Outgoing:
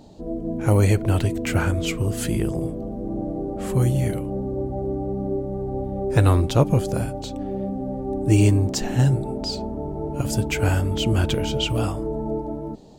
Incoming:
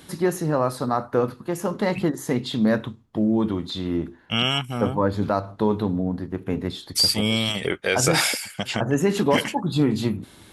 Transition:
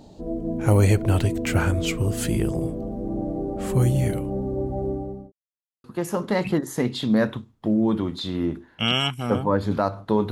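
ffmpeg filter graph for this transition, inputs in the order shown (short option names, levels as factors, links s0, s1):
-filter_complex "[0:a]apad=whole_dur=10.31,atrim=end=10.31,asplit=2[s0][s1];[s0]atrim=end=5.32,asetpts=PTS-STARTPTS,afade=t=out:st=4.87:d=0.45[s2];[s1]atrim=start=5.32:end=5.84,asetpts=PTS-STARTPTS,volume=0[s3];[1:a]atrim=start=1.35:end=5.82,asetpts=PTS-STARTPTS,afade=t=in:d=0.004:c=hsin[s4];[s2][s3][s4]concat=n=3:v=0:a=1"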